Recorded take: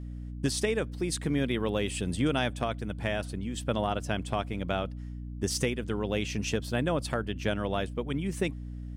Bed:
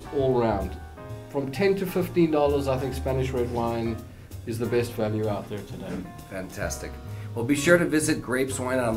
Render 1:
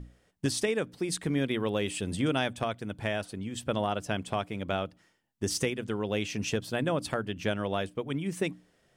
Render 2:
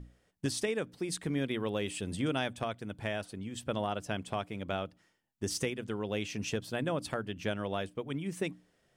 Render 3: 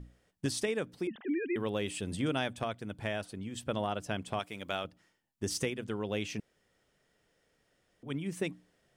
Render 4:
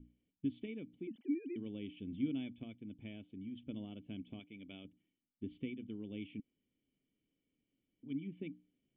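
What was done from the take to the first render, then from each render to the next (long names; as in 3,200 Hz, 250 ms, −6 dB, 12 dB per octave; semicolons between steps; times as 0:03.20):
mains-hum notches 60/120/180/240/300 Hz
level −4 dB
0:01.07–0:01.56: three sine waves on the formant tracks; 0:04.39–0:04.85: spectral tilt +2.5 dB per octave; 0:06.40–0:08.03: fill with room tone
formant resonators in series i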